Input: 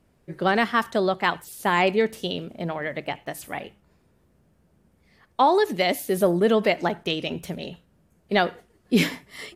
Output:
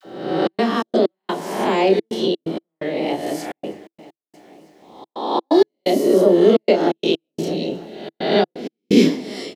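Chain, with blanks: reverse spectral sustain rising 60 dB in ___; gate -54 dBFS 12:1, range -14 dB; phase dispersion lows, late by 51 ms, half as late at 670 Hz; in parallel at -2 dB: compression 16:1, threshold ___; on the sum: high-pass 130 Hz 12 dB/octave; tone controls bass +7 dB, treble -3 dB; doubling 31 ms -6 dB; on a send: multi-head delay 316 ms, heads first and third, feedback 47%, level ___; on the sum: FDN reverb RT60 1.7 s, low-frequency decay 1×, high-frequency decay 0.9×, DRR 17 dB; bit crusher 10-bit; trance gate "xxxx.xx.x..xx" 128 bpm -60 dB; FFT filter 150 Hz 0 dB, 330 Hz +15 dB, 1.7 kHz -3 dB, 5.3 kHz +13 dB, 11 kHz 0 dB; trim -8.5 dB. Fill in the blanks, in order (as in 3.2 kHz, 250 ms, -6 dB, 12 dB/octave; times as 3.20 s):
0.85 s, -27 dBFS, -23 dB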